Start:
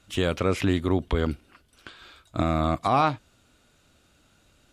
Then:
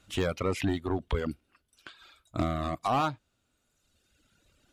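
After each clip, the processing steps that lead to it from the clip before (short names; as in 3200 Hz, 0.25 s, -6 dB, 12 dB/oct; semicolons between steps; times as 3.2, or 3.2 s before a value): overloaded stage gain 17.5 dB; reverb removal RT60 1.6 s; gain -2.5 dB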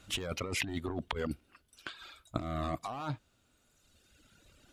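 negative-ratio compressor -35 dBFS, ratio -1; gain -1 dB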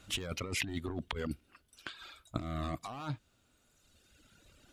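dynamic EQ 730 Hz, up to -5 dB, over -50 dBFS, Q 0.73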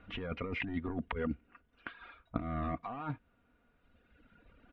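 LPF 2300 Hz 24 dB/oct; comb 4.2 ms, depth 43%; gain +1 dB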